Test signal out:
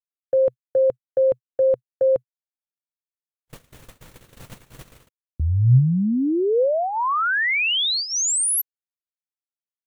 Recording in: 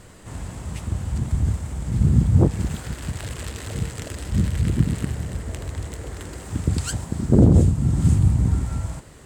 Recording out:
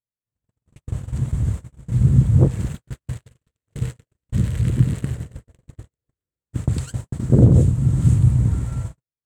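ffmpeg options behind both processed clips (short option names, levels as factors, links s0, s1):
-af "equalizer=f=125:t=o:w=0.33:g=10,equalizer=f=500:t=o:w=0.33:g=4,equalizer=f=800:t=o:w=0.33:g=-4,equalizer=f=5000:t=o:w=0.33:g=-5,agate=range=0.00141:threshold=0.0708:ratio=16:detection=peak,volume=0.794"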